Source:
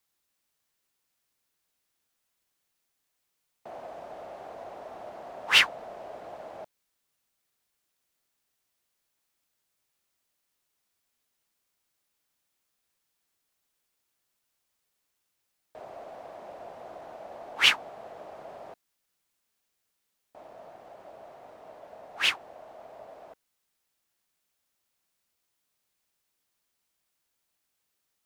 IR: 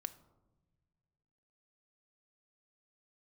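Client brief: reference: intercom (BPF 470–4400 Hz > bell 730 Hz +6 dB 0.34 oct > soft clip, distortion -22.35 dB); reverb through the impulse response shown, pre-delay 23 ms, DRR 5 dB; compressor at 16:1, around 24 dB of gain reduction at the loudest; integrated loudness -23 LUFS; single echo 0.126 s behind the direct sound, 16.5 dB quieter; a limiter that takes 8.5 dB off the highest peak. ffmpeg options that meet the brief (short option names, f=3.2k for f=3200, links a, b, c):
-filter_complex "[0:a]acompressor=threshold=-39dB:ratio=16,alimiter=level_in=13dB:limit=-24dB:level=0:latency=1,volume=-13dB,aecho=1:1:126:0.15,asplit=2[a][b];[1:a]atrim=start_sample=2205,adelay=23[c];[b][c]afir=irnorm=-1:irlink=0,volume=-2dB[d];[a][d]amix=inputs=2:normalize=0,highpass=470,lowpass=4.4k,equalizer=f=730:t=o:w=0.34:g=6,asoftclip=threshold=-34dB,volume=22dB"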